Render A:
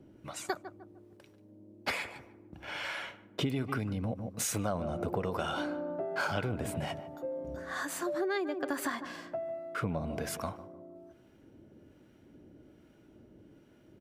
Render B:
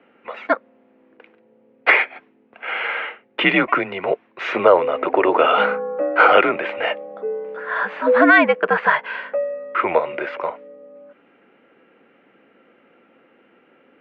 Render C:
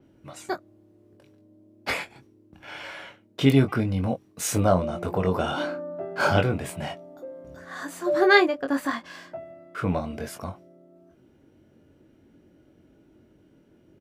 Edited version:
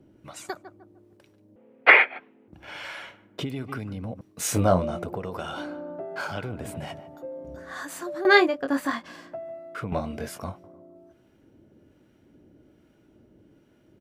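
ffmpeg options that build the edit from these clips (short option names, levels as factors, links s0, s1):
-filter_complex "[2:a]asplit=3[s0][s1][s2];[0:a]asplit=5[s3][s4][s5][s6][s7];[s3]atrim=end=1.562[s8];[1:a]atrim=start=1.558:end=2.482[s9];[s4]atrim=start=2.478:end=4.212[s10];[s0]atrim=start=4.208:end=5.042[s11];[s5]atrim=start=5.038:end=8.252[s12];[s1]atrim=start=8.248:end=9.082[s13];[s6]atrim=start=9.078:end=9.922[s14];[s2]atrim=start=9.918:end=10.642[s15];[s7]atrim=start=10.638[s16];[s8][s9]acrossfade=d=0.004:c1=hsin:c2=hsin[s17];[s17][s10]acrossfade=d=0.004:c1=hsin:c2=hsin[s18];[s18][s11]acrossfade=d=0.004:c1=hsin:c2=hsin[s19];[s19][s12]acrossfade=d=0.004:c1=hsin:c2=hsin[s20];[s20][s13]acrossfade=d=0.004:c1=hsin:c2=hsin[s21];[s21][s14]acrossfade=d=0.004:c1=hsin:c2=hsin[s22];[s22][s15]acrossfade=d=0.004:c1=hsin:c2=hsin[s23];[s23][s16]acrossfade=d=0.004:c1=hsin:c2=hsin"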